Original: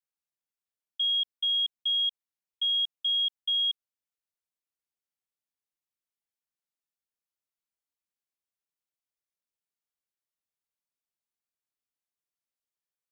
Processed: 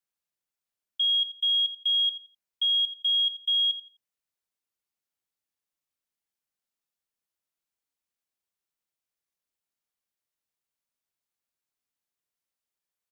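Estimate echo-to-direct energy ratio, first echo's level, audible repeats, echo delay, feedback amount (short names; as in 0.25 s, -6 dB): -13.5 dB, -14.0 dB, 2, 85 ms, 23%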